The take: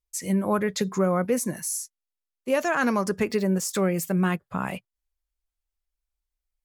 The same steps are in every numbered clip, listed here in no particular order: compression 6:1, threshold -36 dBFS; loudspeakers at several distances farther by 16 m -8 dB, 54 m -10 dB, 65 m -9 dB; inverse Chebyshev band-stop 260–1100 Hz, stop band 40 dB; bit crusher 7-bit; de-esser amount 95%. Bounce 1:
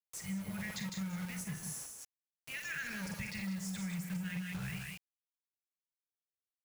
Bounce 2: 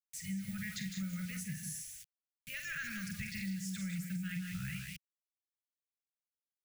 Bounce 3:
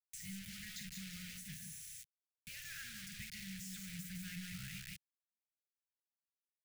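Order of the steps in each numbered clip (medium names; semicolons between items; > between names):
inverse Chebyshev band-stop > bit crusher > loudspeakers at several distances > de-esser > compression; loudspeakers at several distances > bit crusher > de-esser > inverse Chebyshev band-stop > compression; loudspeakers at several distances > compression > bit crusher > de-esser > inverse Chebyshev band-stop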